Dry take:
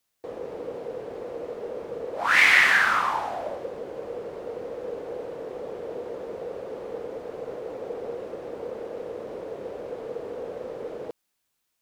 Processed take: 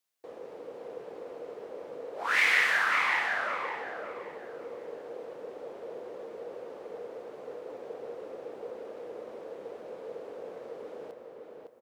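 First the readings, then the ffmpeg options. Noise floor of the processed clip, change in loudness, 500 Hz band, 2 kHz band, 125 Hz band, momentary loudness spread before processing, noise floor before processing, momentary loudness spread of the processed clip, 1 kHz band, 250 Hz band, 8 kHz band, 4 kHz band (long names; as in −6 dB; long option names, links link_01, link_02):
−48 dBFS, −5.5 dB, −7.0 dB, −6.0 dB, below −10 dB, 18 LU, −77 dBFS, 19 LU, −5.5 dB, −8.5 dB, −6.5 dB, −6.0 dB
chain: -filter_complex "[0:a]highpass=frequency=310:poles=1,asplit=2[link_01][link_02];[link_02]adelay=559,lowpass=frequency=3400:poles=1,volume=-3.5dB,asplit=2[link_03][link_04];[link_04]adelay=559,lowpass=frequency=3400:poles=1,volume=0.3,asplit=2[link_05][link_06];[link_06]adelay=559,lowpass=frequency=3400:poles=1,volume=0.3,asplit=2[link_07][link_08];[link_08]adelay=559,lowpass=frequency=3400:poles=1,volume=0.3[link_09];[link_01][link_03][link_05][link_07][link_09]amix=inputs=5:normalize=0,volume=-7dB"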